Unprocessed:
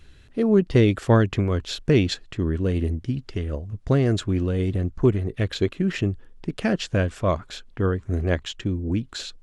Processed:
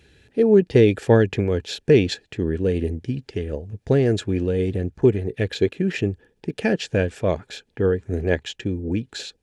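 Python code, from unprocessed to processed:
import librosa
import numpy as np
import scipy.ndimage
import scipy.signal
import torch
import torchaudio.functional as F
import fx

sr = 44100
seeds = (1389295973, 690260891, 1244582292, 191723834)

y = scipy.signal.sosfilt(scipy.signal.butter(2, 81.0, 'highpass', fs=sr, output='sos'), x)
y = fx.peak_eq(y, sr, hz=1100.0, db=-10.0, octaves=0.57)
y = fx.small_body(y, sr, hz=(450.0, 850.0, 1700.0, 2400.0), ring_ms=25, db=8)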